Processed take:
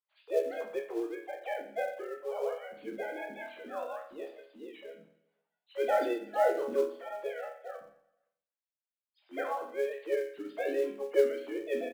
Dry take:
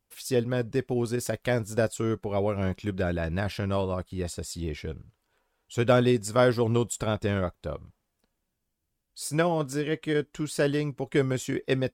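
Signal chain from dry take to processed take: formants replaced by sine waves; hum notches 50/100/150/200/250/300 Hz; chord resonator C#2 minor, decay 0.54 s; in parallel at -3.5 dB: short-mantissa float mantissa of 2-bit; on the sum: harmony voices +5 st -4 dB; on a send: feedback delay 128 ms, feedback 57%, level -24 dB

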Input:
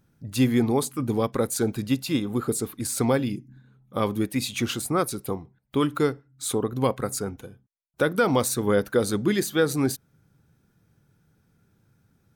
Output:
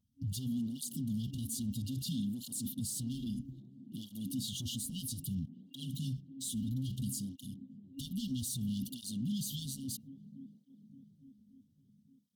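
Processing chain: waveshaping leveller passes 3; gate -36 dBFS, range -8 dB; FFT band-reject 270–2800 Hz; peak limiter -32.5 dBFS, peak gain reduction 24.5 dB; 3.11–4.08 s: AM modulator 93 Hz, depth 25%; feedback echo behind a band-pass 288 ms, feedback 76%, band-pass 420 Hz, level -11 dB; cancelling through-zero flanger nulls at 0.61 Hz, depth 7 ms; trim +3.5 dB

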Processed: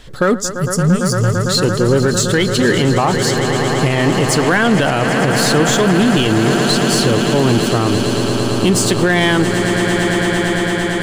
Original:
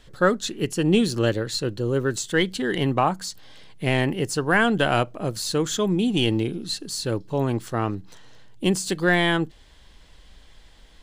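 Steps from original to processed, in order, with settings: time-frequency box 0.35–1.49 s, 200–4500 Hz -21 dB; echo with a slow build-up 113 ms, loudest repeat 8, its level -15 dB; in parallel at -3.5 dB: overload inside the chain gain 22.5 dB; on the sum: peak limiter -12.5 dBFS, peak gain reduction 7.5 dB; trim +7.5 dB

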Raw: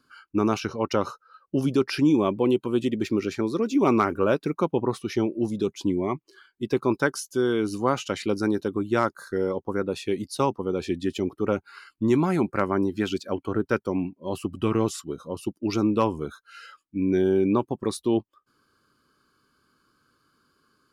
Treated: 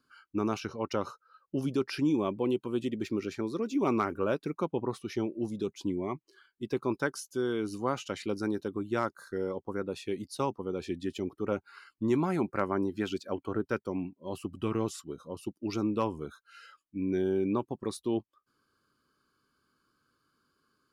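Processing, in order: 11.51–13.64 s: peaking EQ 760 Hz +2.5 dB 2.6 oct; trim -7.5 dB

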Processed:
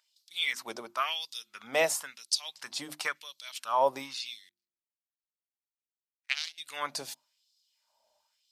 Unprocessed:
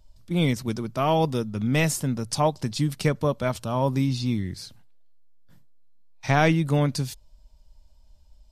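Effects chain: 4.49–6.58 s: power-law waveshaper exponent 3; hum notches 50/100/150/200/250/300/350 Hz; LFO high-pass sine 0.96 Hz 620–4300 Hz; trim -3 dB

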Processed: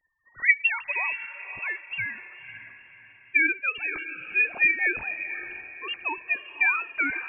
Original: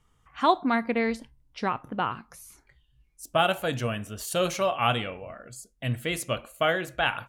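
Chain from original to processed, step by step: formants replaced by sine waves; frequency inversion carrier 3 kHz; echo that smears into a reverb 540 ms, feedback 41%, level -11.5 dB

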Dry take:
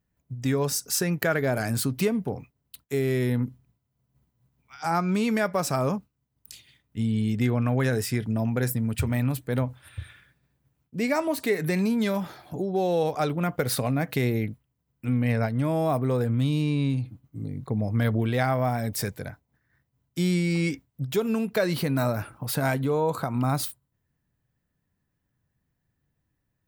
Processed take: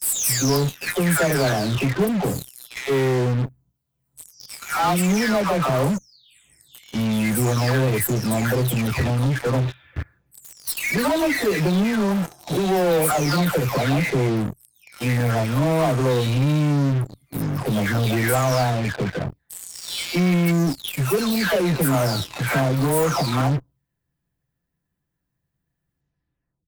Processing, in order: delay that grows with frequency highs early, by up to 668 ms; in parallel at -9.5 dB: fuzz box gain 42 dB, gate -42 dBFS

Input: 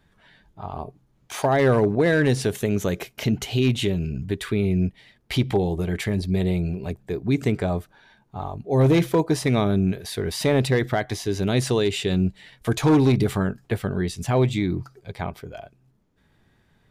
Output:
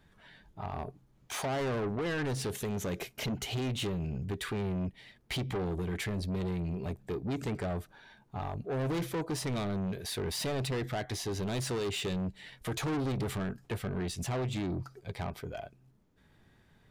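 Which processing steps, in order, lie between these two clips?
in parallel at +0.5 dB: compression, threshold -28 dBFS, peak gain reduction 13 dB; on the sum: saturation -22 dBFS, distortion -8 dB; trim -8 dB

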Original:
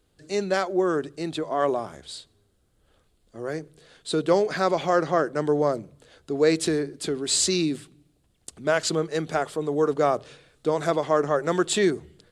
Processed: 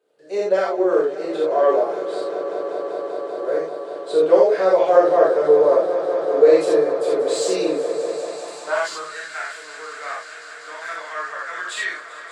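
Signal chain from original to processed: on a send: echo with a slow build-up 194 ms, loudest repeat 5, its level -15.5 dB; on the sum: gated-style reverb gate 110 ms flat, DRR -6 dB; in parallel at -9 dB: saturation -13.5 dBFS, distortion -11 dB; on the sum: bass shelf 84 Hz -6 dB; high-pass sweep 480 Hz -> 1.7 kHz, 8.05–9.35 s; treble shelf 3.2 kHz -11 dB; trim -6.5 dB

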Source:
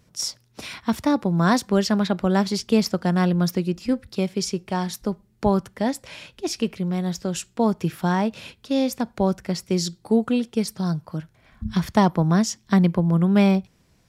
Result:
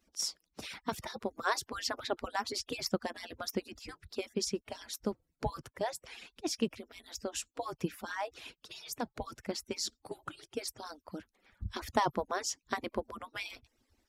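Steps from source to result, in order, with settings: harmonic-percussive separation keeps percussive; trim -7 dB

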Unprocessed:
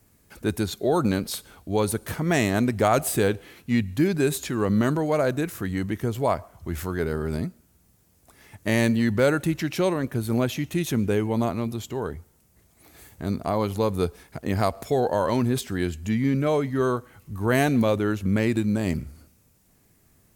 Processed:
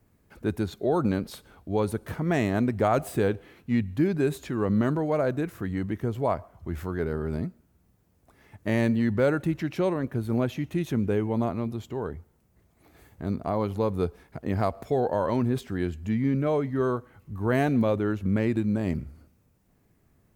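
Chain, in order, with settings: peaking EQ 10 kHz -12.5 dB 2.8 oct; trim -2 dB

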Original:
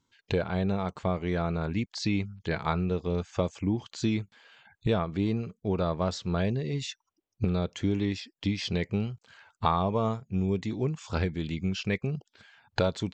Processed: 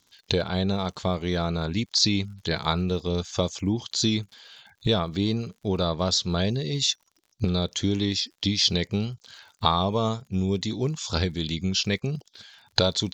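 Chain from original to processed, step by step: high-order bell 4.8 kHz +13 dB 1.3 oct; crackle 72 per s -48 dBFS; trim +2.5 dB

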